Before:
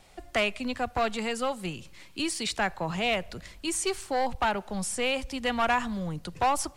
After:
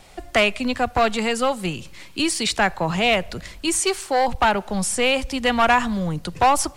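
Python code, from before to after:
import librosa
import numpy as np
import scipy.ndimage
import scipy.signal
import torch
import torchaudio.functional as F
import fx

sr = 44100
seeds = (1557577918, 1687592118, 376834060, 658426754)

y = fx.bass_treble(x, sr, bass_db=-9, treble_db=0, at=(3.79, 4.28))
y = y * librosa.db_to_amplitude(8.5)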